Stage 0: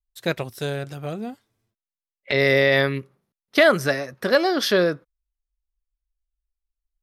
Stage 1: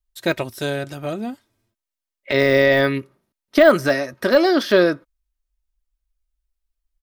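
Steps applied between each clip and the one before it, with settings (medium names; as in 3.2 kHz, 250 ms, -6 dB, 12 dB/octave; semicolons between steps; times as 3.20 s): de-esser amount 70%; comb 3.2 ms, depth 41%; trim +4 dB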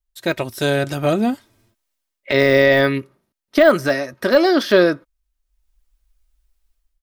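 level rider gain up to 13 dB; trim -1 dB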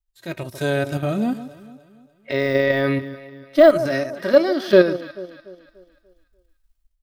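level held to a coarse grid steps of 12 dB; echo whose repeats swap between lows and highs 146 ms, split 990 Hz, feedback 63%, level -13 dB; harmonic-percussive split percussive -13 dB; trim +4.5 dB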